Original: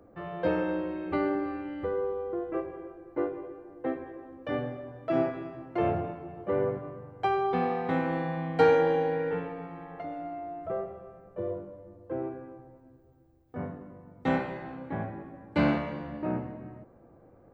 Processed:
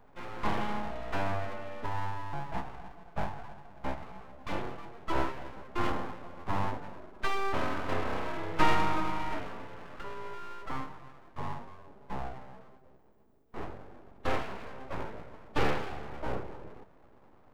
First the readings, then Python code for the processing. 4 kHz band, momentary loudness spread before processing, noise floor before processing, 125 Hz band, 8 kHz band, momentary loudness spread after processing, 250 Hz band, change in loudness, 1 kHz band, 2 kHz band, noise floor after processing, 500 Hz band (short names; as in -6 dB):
+5.0 dB, 16 LU, -57 dBFS, -2.5 dB, n/a, 16 LU, -8.0 dB, -5.0 dB, -0.5 dB, +0.5 dB, -57 dBFS, -9.5 dB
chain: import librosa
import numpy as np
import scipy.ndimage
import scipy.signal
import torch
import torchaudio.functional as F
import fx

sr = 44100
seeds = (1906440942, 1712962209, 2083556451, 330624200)

y = fx.spec_quant(x, sr, step_db=15)
y = np.abs(y)